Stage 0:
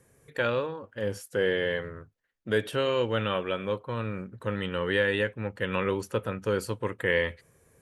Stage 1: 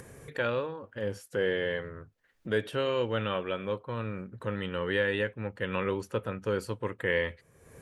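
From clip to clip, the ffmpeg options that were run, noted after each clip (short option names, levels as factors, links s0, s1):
-af "highshelf=f=6300:g=-6.5,acompressor=mode=upward:threshold=0.0224:ratio=2.5,volume=0.75"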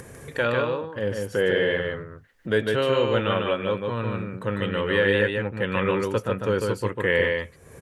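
-af "aecho=1:1:149:0.668,volume=2"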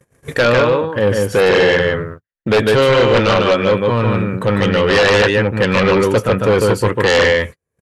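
-af "aeval=exprs='0.422*sin(PI/2*3.16*val(0)/0.422)':c=same,agate=range=0.00501:threshold=0.0562:ratio=16:detection=peak"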